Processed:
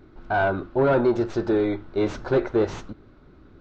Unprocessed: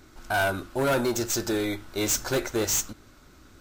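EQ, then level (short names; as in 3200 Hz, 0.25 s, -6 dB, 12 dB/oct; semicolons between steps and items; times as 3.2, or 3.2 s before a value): fifteen-band EQ 160 Hz +4 dB, 400 Hz +5 dB, 4000 Hz +5 dB; dynamic EQ 980 Hz, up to +5 dB, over -36 dBFS, Q 0.75; tape spacing loss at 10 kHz 44 dB; +2.5 dB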